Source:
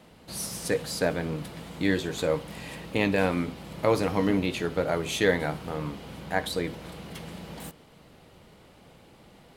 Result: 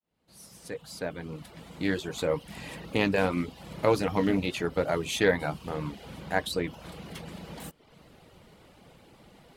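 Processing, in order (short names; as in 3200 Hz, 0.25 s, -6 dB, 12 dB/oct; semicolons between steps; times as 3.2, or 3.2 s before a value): opening faded in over 2.63 s; reverb removal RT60 0.52 s; Doppler distortion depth 0.11 ms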